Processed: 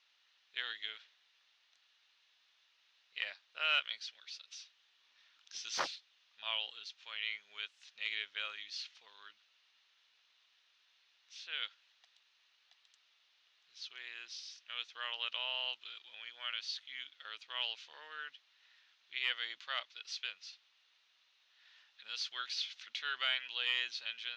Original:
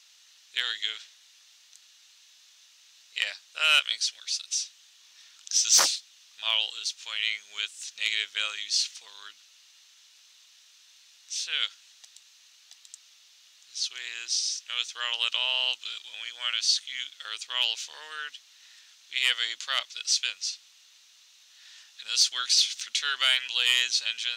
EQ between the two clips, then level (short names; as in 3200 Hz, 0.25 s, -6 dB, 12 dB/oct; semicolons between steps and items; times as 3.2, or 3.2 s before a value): air absorption 300 m; -6.0 dB